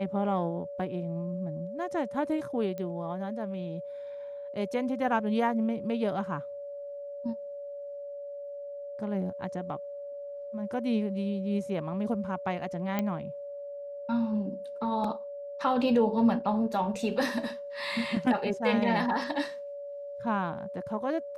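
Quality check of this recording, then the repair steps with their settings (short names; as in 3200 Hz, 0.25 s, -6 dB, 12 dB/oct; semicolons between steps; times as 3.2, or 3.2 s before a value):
tone 570 Hz -37 dBFS
2.78 pop -25 dBFS
12.99 pop -16 dBFS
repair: de-click; notch 570 Hz, Q 30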